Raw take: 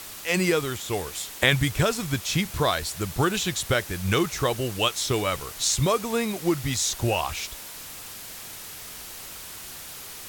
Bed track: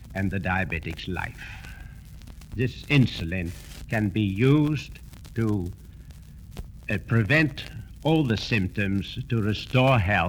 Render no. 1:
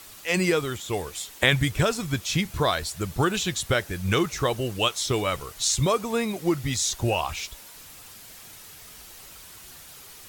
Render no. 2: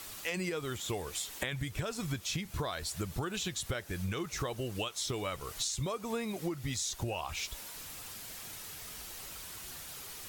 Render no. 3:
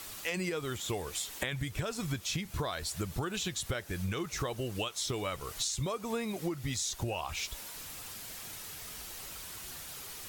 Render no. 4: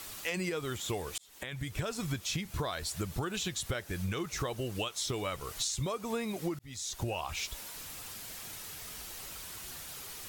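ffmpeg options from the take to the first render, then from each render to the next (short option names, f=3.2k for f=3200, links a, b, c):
-af "afftdn=nr=7:nf=-40"
-af "alimiter=limit=-14dB:level=0:latency=1:release=223,acompressor=threshold=-33dB:ratio=6"
-af "volume=1dB"
-filter_complex "[0:a]asplit=3[a][b][c];[a]atrim=end=1.18,asetpts=PTS-STARTPTS,afade=t=out:st=1.176:d=0.004:c=hsin[d];[b]atrim=start=1.18:end=6.59,asetpts=PTS-STARTPTS,afade=t=in:d=0.58,afade=t=out:st=5.406:d=0.004:c=hsin[e];[c]atrim=start=6.59,asetpts=PTS-STARTPTS,afade=t=in:d=0.41[f];[d][e][f]concat=n=3:v=0:a=1"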